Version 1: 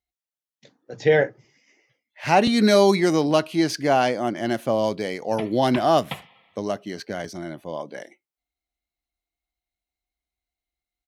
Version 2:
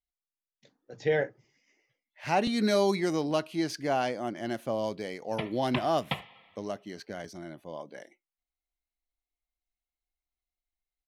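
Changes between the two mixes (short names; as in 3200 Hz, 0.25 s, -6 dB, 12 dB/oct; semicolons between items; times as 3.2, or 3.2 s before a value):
speech -9.0 dB; master: remove HPF 53 Hz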